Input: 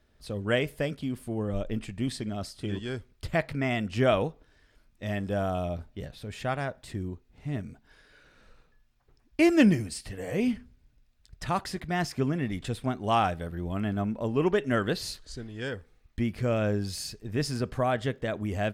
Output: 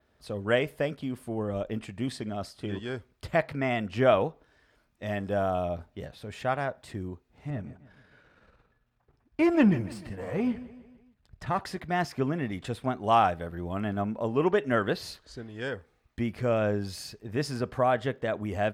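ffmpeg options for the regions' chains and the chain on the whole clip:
-filter_complex "[0:a]asettb=1/sr,asplit=3[s0][s1][s2];[s0]atrim=end=7.504[s3];[s1]atrim=start=7.5:end=11.61,asetpts=PTS-STARTPTS,afade=t=in:d=0.004:c=qsin,afade=t=out:st=4.106:d=0.004:c=qsin,aeval=exprs='if(lt(val(0),0),0.447*val(0),val(0))':c=same,bass=f=250:g=6,treble=f=4000:g=-7,aecho=1:1:150|300|450|600:0.141|0.072|0.0367|0.0187,atrim=end_sample=181251[s4];[s2]atrim=start=11.606[s5];[s3][s4]acrossfade=d=0.004:c1=hsin:c2=qsin[s6];[s6][s5]acrossfade=d=0.004:c1=qsin:c2=hsin,adynamicequalizer=threshold=0.002:dfrequency=8000:dqfactor=0.9:tfrequency=8000:tqfactor=0.9:attack=5:release=100:ratio=0.375:range=3:mode=cutabove:tftype=bell,highpass=54,equalizer=f=860:t=o:w=2.4:g=6.5,volume=0.708"

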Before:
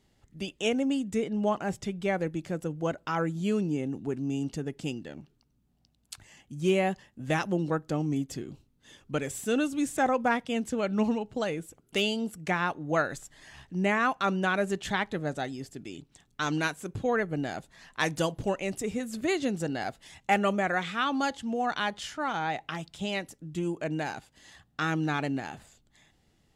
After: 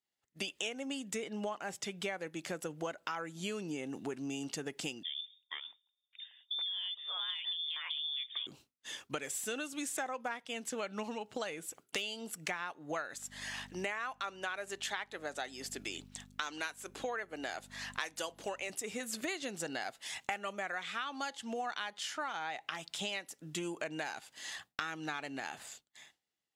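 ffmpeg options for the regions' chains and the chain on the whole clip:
-filter_complex "[0:a]asettb=1/sr,asplit=3[s0][s1][s2];[s0]atrim=end=5.034[s3];[s1]atrim=start=5.03:end=8.47,asetpts=PTS-STARTPTS,afade=t=in:d=0.004:c=qsin,afade=t=out:st=3.436:d=0.004:c=qsin,lowpass=f=3100:t=q:w=0.5098,lowpass=f=3100:t=q:w=0.6013,lowpass=f=3100:t=q:w=0.9,lowpass=f=3100:t=q:w=2.563,afreqshift=-3700,acompressor=threshold=0.0282:ratio=10:attack=3.2:release=140:knee=1:detection=peak,acrossover=split=210|2500[s4][s5][s6];[s5]adelay=460[s7];[s4]adelay=620[s8];[s8][s7][s6]amix=inputs=3:normalize=0,atrim=end_sample=151704[s9];[s2]atrim=start=8.466[s10];[s3][s9]acrossfade=d=0.004:c1=hsin:c2=qsin[s11];[s11][s10]acrossfade=d=0.004:c1=qsin:c2=hsin,asettb=1/sr,asplit=3[s12][s13][s14];[s12]atrim=end=13.144[s15];[s13]atrim=start=13.14:end=18.7,asetpts=PTS-STARTPTS,afade=t=in:d=0.004:c=qsin,afade=t=out:st=5.556:d=0.004:c=qsin,highpass=300,aeval=exprs='val(0)+0.00794*(sin(2*PI*50*n/s)+sin(2*PI*2*50*n/s)/2+sin(2*PI*3*50*n/s)/3+sin(2*PI*4*50*n/s)/4+sin(2*PI*5*50*n/s)/5)':c=same[s16];[s14]atrim=start=18.696[s17];[s15][s16]acrossfade=d=0.004:c1=hsin:c2=qsin[s18];[s18][s17]acrossfade=d=0.004:c1=qsin:c2=hsin,highpass=f=1200:p=1,agate=range=0.0224:threshold=0.00126:ratio=3:detection=peak,acompressor=threshold=0.00447:ratio=8,volume=3.55"

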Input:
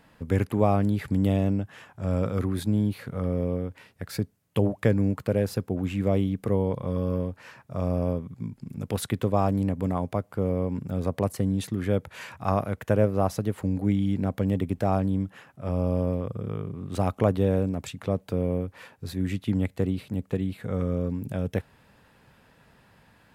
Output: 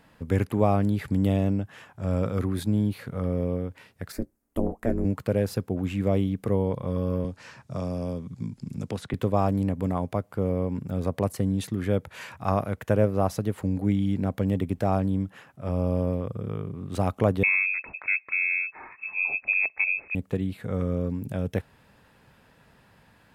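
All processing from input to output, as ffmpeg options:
-filter_complex "[0:a]asettb=1/sr,asplit=3[s0][s1][s2];[s0]atrim=end=4.124[s3];[s1]atrim=start=4.12:end=5.05,asetpts=PTS-STARTPTS,afade=t=in:d=0.004:c=qsin,afade=t=out:st=0.926:d=0.004:c=qsin,equalizer=f=3300:w=1.1:g=-12.5,aeval=exprs='val(0)*sin(2*PI*120*n/s)':c=same,asplit=2[s4][s5];[s5]adelay=17,volume=0.2[s6];[s4][s6]amix=inputs=2:normalize=0,atrim=end_sample=41013[s7];[s2]atrim=start=5.046[s8];[s3][s7]acrossfade=d=0.004:c1=hsin:c2=qsin[s9];[s9][s8]acrossfade=d=0.004:c1=qsin:c2=hsin,asettb=1/sr,asplit=3[s10][s11][s12];[s10]atrim=end=7.244[s13];[s11]atrim=start=7.24:end=9.14,asetpts=PTS-STARTPTS,afade=t=in:d=0.004:c=qsin,afade=t=out:st=1.896:d=0.004:c=qsin,lowpass=6100,bass=f=250:g=6,treble=f=4000:g=14,acrossover=split=180|2600[s14][s15][s16];[s14]acompressor=threshold=0.0141:ratio=4[s17];[s15]acompressor=threshold=0.0355:ratio=4[s18];[s16]acompressor=threshold=0.00251:ratio=4[s19];[s17][s18][s19]amix=inputs=3:normalize=0[s20];[s12]atrim=start=9.136[s21];[s13][s20]acrossfade=d=0.004:c1=hsin:c2=qsin[s22];[s22][s21]acrossfade=d=0.004:c1=qsin:c2=hsin,asettb=1/sr,asplit=3[s23][s24][s25];[s23]atrim=end=17.434[s26];[s24]atrim=start=17.43:end=20.15,asetpts=PTS-STARTPTS,afade=t=in:d=0.004:c=qsin,afade=t=out:st=2.716:d=0.004:c=qsin,lowpass=f=2300:t=q:w=0.5098,lowpass=f=2300:t=q:w=0.6013,lowpass=f=2300:t=q:w=0.9,lowpass=f=2300:t=q:w=2.563,afreqshift=-2700,acompressor=mode=upward:threshold=0.0178:ratio=2.5:attack=3.2:release=140:knee=2.83:detection=peak[s27];[s25]atrim=start=20.146[s28];[s26][s27]acrossfade=d=0.004:c1=hsin:c2=qsin[s29];[s29][s28]acrossfade=d=0.004:c1=qsin:c2=hsin"

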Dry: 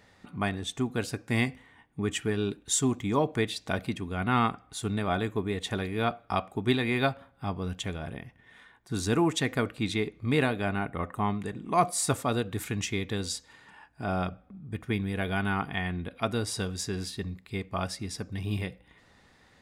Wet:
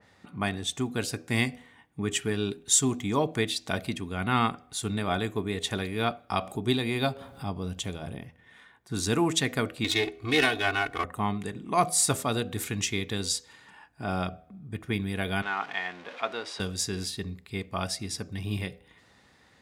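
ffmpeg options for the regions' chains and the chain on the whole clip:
-filter_complex "[0:a]asettb=1/sr,asplit=3[s0][s1][s2];[s0]atrim=end=6.414[s3];[s1]atrim=start=6.41:end=8.25,asetpts=PTS-STARTPTS,afade=t=in:d=0.004:c=qsin,afade=t=out:st=1.836:d=0.004:c=qsin,equalizer=f=1800:t=o:w=1.4:g=-6,acompressor=mode=upward:threshold=0.0282:ratio=2.5:attack=3.2:release=140:knee=2.83:detection=peak[s4];[s2]atrim=start=8.246[s5];[s3][s4]acrossfade=d=0.004:c1=hsin:c2=qsin[s6];[s6][s5]acrossfade=d=0.004:c1=qsin:c2=hsin,asettb=1/sr,asplit=3[s7][s8][s9];[s7]atrim=end=9.844[s10];[s8]atrim=start=9.84:end=11.04,asetpts=PTS-STARTPTS,afade=t=in:d=0.004:c=qsin,afade=t=out:st=1.196:d=0.004:c=qsin,aeval=exprs='if(lt(val(0),0),0.251*val(0),val(0))':c=same,equalizer=f=2100:w=0.39:g=5,aecho=1:1:2.7:0.95,atrim=end_sample=52920[s11];[s9]atrim=start=11.036[s12];[s10][s11]acrossfade=d=0.004:c1=hsin:c2=qsin[s13];[s13][s12]acrossfade=d=0.004:c1=qsin:c2=hsin,asettb=1/sr,asplit=3[s14][s15][s16];[s14]atrim=end=15.424[s17];[s15]atrim=start=15.42:end=16.6,asetpts=PTS-STARTPTS,afade=t=in:d=0.004:c=qsin,afade=t=out:st=1.176:d=0.004:c=qsin,aeval=exprs='val(0)+0.5*0.015*sgn(val(0))':c=same,highpass=540,lowpass=2800[s18];[s16]atrim=start=16.596[s19];[s17][s18]acrossfade=d=0.004:c1=hsin:c2=qsin[s20];[s20][s19]acrossfade=d=0.004:c1=qsin:c2=hsin,highpass=61,bandreject=f=81.55:t=h:w=4,bandreject=f=163.1:t=h:w=4,bandreject=f=244.65:t=h:w=4,bandreject=f=326.2:t=h:w=4,bandreject=f=407.75:t=h:w=4,bandreject=f=489.3:t=h:w=4,bandreject=f=570.85:t=h:w=4,bandreject=f=652.4:t=h:w=4,bandreject=f=733.95:t=h:w=4,adynamicequalizer=threshold=0.00631:dfrequency=2700:dqfactor=0.7:tfrequency=2700:tqfactor=0.7:attack=5:release=100:ratio=0.375:range=3:mode=boostabove:tftype=highshelf"

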